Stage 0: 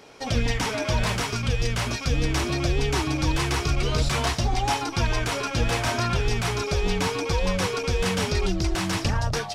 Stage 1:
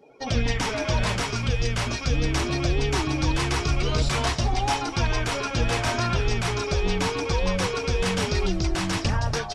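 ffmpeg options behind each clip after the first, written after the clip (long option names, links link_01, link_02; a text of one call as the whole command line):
ffmpeg -i in.wav -filter_complex "[0:a]afftdn=noise_reduction=21:noise_floor=-45,asplit=6[link_01][link_02][link_03][link_04][link_05][link_06];[link_02]adelay=164,afreqshift=-48,volume=-17dB[link_07];[link_03]adelay=328,afreqshift=-96,volume=-22.7dB[link_08];[link_04]adelay=492,afreqshift=-144,volume=-28.4dB[link_09];[link_05]adelay=656,afreqshift=-192,volume=-34dB[link_10];[link_06]adelay=820,afreqshift=-240,volume=-39.7dB[link_11];[link_01][link_07][link_08][link_09][link_10][link_11]amix=inputs=6:normalize=0" out.wav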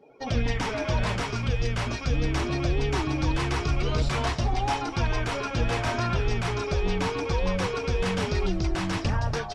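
ffmpeg -i in.wav -af "acontrast=73,highshelf=frequency=4300:gain=-9,volume=-8dB" out.wav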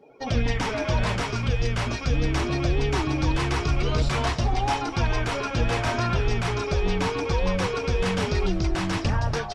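ffmpeg -i in.wav -filter_complex "[0:a]asplit=2[link_01][link_02];[link_02]adelay=390,highpass=300,lowpass=3400,asoftclip=type=hard:threshold=-23.5dB,volume=-21dB[link_03];[link_01][link_03]amix=inputs=2:normalize=0,volume=2dB" out.wav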